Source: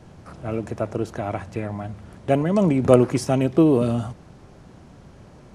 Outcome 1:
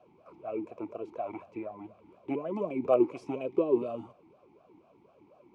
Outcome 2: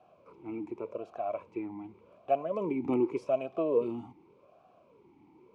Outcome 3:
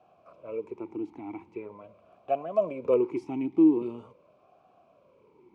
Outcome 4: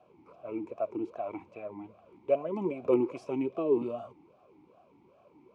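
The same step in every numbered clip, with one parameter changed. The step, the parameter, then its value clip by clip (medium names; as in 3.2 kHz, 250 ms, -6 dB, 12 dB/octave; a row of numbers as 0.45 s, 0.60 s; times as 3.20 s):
talking filter, rate: 4.1 Hz, 0.86 Hz, 0.43 Hz, 2.5 Hz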